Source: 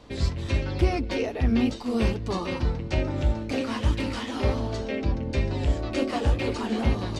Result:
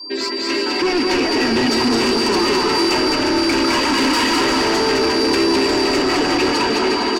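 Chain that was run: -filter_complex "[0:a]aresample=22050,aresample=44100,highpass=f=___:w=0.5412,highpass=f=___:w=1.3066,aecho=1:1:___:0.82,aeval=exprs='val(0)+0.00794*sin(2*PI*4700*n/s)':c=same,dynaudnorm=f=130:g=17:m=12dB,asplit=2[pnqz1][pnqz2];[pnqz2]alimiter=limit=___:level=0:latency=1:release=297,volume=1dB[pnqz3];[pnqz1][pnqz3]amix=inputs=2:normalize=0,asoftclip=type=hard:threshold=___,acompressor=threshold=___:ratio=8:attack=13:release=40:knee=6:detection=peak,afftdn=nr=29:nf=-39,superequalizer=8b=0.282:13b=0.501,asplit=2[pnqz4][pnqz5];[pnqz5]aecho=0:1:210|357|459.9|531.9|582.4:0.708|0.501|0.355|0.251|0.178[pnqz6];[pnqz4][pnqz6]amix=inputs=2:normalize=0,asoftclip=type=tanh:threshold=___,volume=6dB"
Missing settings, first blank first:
320, 320, 3.1, -12.5dB, -15.5dB, -20dB, -17.5dB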